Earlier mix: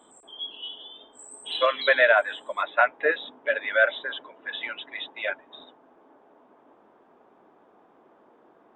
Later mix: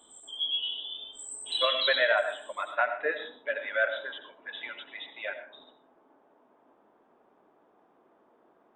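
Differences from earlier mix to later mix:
speech -8.0 dB; reverb: on, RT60 0.50 s

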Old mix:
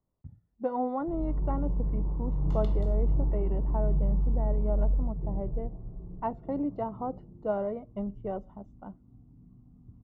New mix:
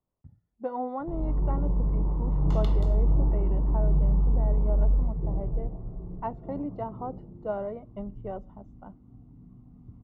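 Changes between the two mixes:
background +8.5 dB; master: add low shelf 390 Hz -5 dB

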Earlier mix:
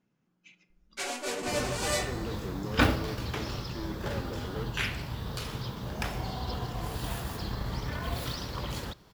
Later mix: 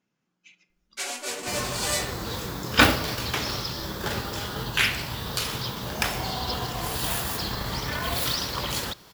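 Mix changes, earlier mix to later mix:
second sound +7.5 dB; master: add tilt +2 dB/oct

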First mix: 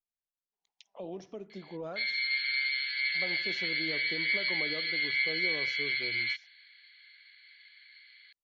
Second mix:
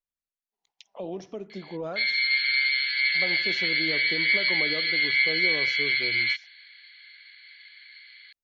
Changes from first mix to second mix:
speech +6.0 dB; background +7.0 dB

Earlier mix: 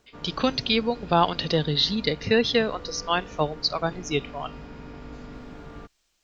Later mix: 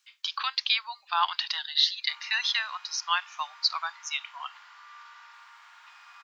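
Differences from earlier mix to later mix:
background: entry +1.95 s; master: add steep high-pass 940 Hz 48 dB/oct

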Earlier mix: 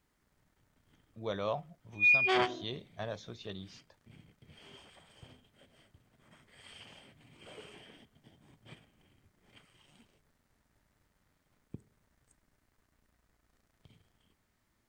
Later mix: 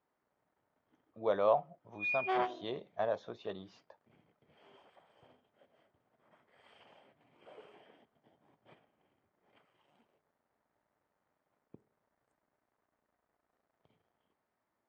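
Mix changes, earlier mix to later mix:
speech +8.0 dB; master: add band-pass 710 Hz, Q 1.1

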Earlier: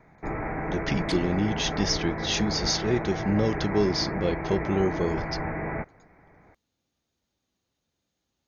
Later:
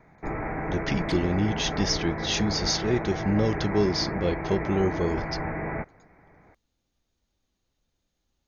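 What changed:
speech: remove HPF 92 Hz; second sound: add high shelf 6200 Hz -11.5 dB

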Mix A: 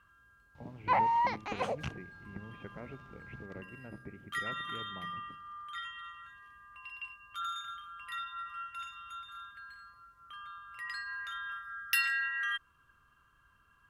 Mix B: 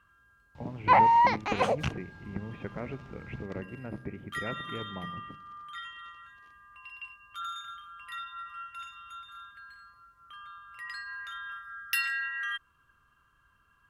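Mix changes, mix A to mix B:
speech +8.5 dB; first sound +7.5 dB

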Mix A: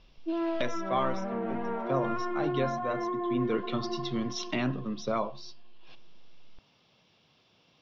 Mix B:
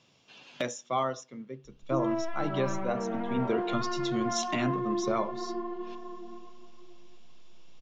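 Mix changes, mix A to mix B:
background: entry +1.65 s; master: remove steep low-pass 5500 Hz 48 dB/oct

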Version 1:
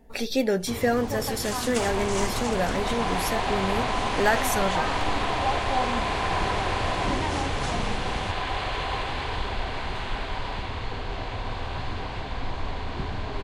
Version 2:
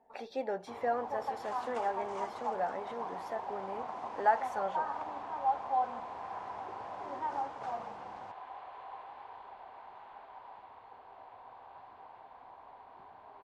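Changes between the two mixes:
second sound -12.0 dB; master: add band-pass 850 Hz, Q 2.9

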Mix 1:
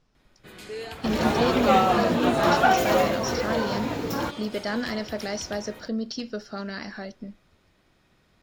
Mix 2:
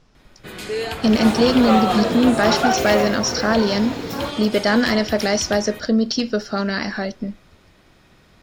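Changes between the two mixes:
speech +11.5 dB; first sound +10.5 dB

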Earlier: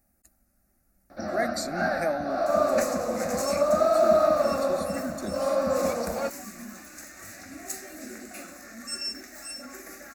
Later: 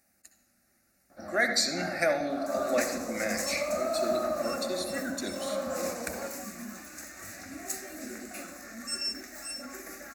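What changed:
speech: add weighting filter D; first sound -10.0 dB; reverb: on, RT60 0.85 s

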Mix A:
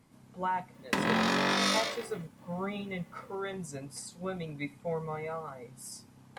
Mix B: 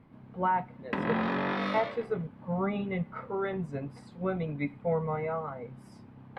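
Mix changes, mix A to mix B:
speech +6.5 dB; master: add air absorption 490 m

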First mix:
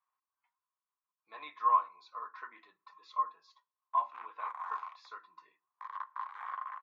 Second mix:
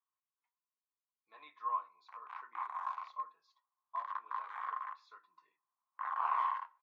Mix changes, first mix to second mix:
speech -9.5 dB; background: entry -1.85 s

